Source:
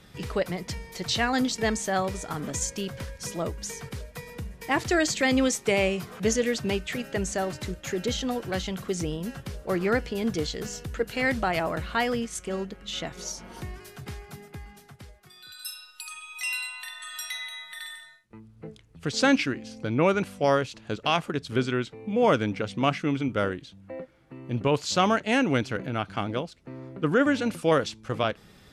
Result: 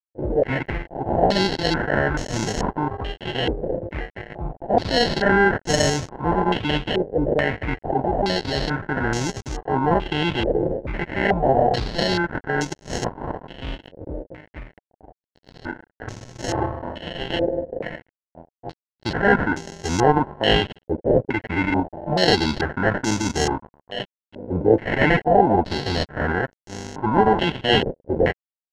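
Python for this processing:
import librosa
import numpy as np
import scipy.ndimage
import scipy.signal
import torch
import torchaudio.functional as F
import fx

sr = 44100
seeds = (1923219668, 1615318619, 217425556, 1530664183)

p1 = fx.notch(x, sr, hz=850.0, q=12.0)
p2 = fx.transient(p1, sr, attack_db=-8, sustain_db=-1)
p3 = fx.over_compress(p2, sr, threshold_db=-34.0, ratio=-1.0)
p4 = p2 + (p3 * librosa.db_to_amplitude(-3.0))
p5 = fx.pitch_keep_formants(p4, sr, semitones=-5.0)
p6 = fx.sample_hold(p5, sr, seeds[0], rate_hz=1200.0, jitter_pct=0)
p7 = np.sign(p6) * np.maximum(np.abs(p6) - 10.0 ** (-39.0 / 20.0), 0.0)
p8 = fx.filter_held_lowpass(p7, sr, hz=2.3, low_hz=520.0, high_hz=6300.0)
y = p8 * librosa.db_to_amplitude(5.5)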